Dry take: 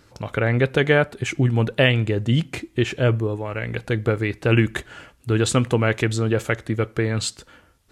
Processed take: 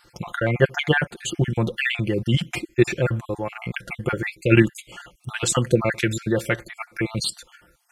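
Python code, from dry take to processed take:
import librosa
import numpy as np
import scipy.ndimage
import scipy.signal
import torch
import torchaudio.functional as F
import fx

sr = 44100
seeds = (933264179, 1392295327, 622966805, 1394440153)

p1 = fx.spec_dropout(x, sr, seeds[0], share_pct=46)
p2 = fx.high_shelf(p1, sr, hz=7500.0, db=6.5)
p3 = p2 + 0.64 * np.pad(p2, (int(5.7 * sr / 1000.0), 0))[:len(p2)]
p4 = fx.level_steps(p3, sr, step_db=16)
p5 = p3 + (p4 * librosa.db_to_amplitude(-1.5))
y = p5 * librosa.db_to_amplitude(-2.5)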